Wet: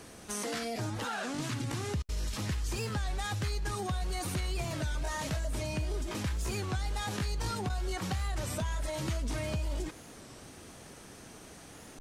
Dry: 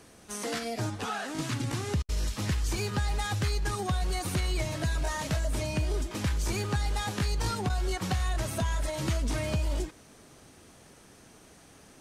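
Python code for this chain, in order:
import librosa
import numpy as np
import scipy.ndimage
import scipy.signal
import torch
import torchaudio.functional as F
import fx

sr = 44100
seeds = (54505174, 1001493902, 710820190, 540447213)

p1 = fx.over_compress(x, sr, threshold_db=-40.0, ratio=-1.0)
p2 = x + F.gain(torch.from_numpy(p1), -3.0).numpy()
p3 = fx.record_warp(p2, sr, rpm=33.33, depth_cents=160.0)
y = F.gain(torch.from_numpy(p3), -5.5).numpy()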